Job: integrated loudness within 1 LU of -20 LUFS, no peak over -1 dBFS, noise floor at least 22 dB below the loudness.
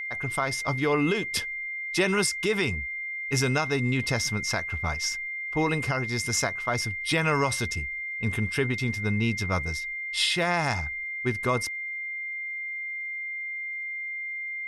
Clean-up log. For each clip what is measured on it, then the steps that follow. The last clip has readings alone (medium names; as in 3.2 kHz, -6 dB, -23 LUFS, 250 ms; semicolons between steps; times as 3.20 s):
tick rate 29 per s; steady tone 2.1 kHz; tone level -31 dBFS; loudness -27.5 LUFS; peak level -12.5 dBFS; loudness target -20.0 LUFS
-> de-click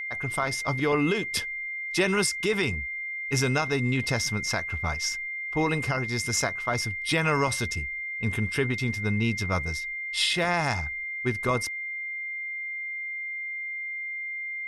tick rate 0 per s; steady tone 2.1 kHz; tone level -31 dBFS
-> band-stop 2.1 kHz, Q 30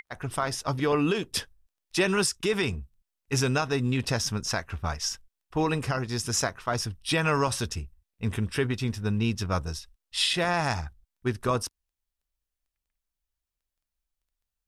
steady tone not found; loudness -28.0 LUFS; peak level -14.0 dBFS; loudness target -20.0 LUFS
-> trim +8 dB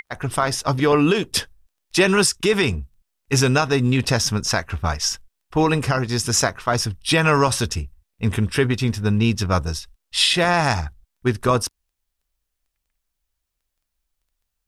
loudness -20.0 LUFS; peak level -6.0 dBFS; noise floor -78 dBFS